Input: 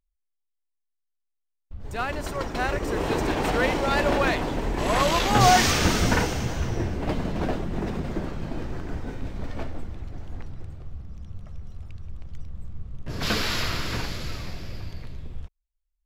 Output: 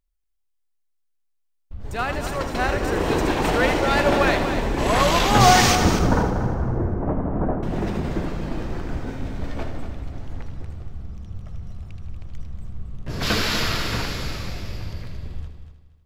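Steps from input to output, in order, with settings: 5.75–7.63 LPF 1300 Hz 24 dB/oct; multi-head echo 79 ms, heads first and third, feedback 43%, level -10 dB; gain +3 dB

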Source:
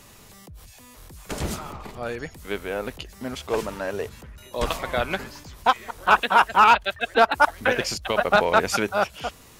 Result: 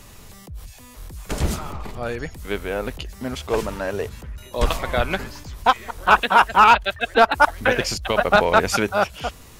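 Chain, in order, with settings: low shelf 82 Hz +10.5 dB; gain +2.5 dB

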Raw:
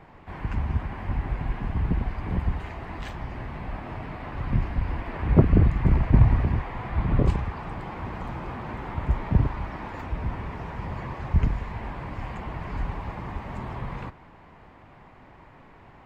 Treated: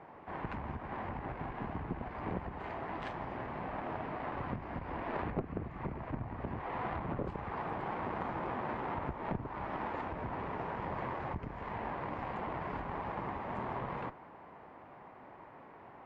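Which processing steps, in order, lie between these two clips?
compressor 16:1, threshold -25 dBFS, peak gain reduction 17 dB; band-pass 660 Hz, Q 0.62; tube stage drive 30 dB, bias 0.75; gain +5 dB

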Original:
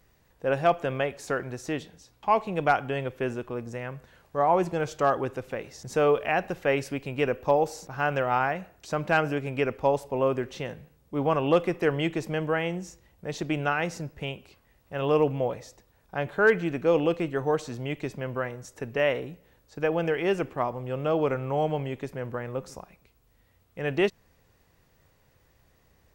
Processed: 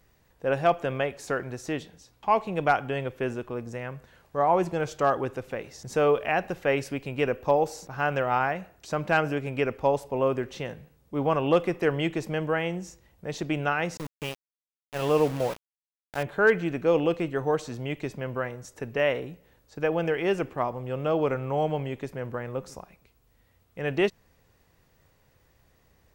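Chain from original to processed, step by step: 13.97–16.23 sample gate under -32.5 dBFS

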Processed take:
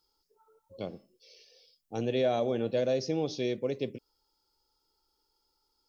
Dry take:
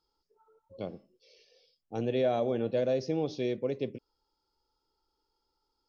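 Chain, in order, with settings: high shelf 4500 Hz +11.5 dB

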